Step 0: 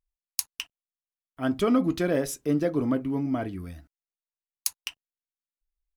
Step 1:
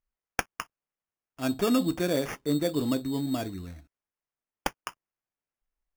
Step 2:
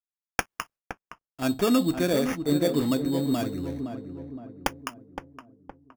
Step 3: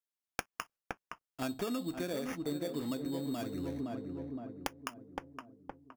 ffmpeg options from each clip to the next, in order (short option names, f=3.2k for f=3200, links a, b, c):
-af "acrusher=samples=11:mix=1:aa=0.000001,volume=-2dB"
-filter_complex "[0:a]agate=range=-33dB:threshold=-51dB:ratio=3:detection=peak,asplit=2[a][b];[b]adelay=516,lowpass=f=1.2k:p=1,volume=-7.5dB,asplit=2[c][d];[d]adelay=516,lowpass=f=1.2k:p=1,volume=0.5,asplit=2[e][f];[f]adelay=516,lowpass=f=1.2k:p=1,volume=0.5,asplit=2[g][h];[h]adelay=516,lowpass=f=1.2k:p=1,volume=0.5,asplit=2[i][j];[j]adelay=516,lowpass=f=1.2k:p=1,volume=0.5,asplit=2[k][l];[l]adelay=516,lowpass=f=1.2k:p=1,volume=0.5[m];[c][e][g][i][k][m]amix=inputs=6:normalize=0[n];[a][n]amix=inputs=2:normalize=0,volume=2.5dB"
-af "lowshelf=f=160:g=-5,acompressor=threshold=-33dB:ratio=6,volume=-1dB"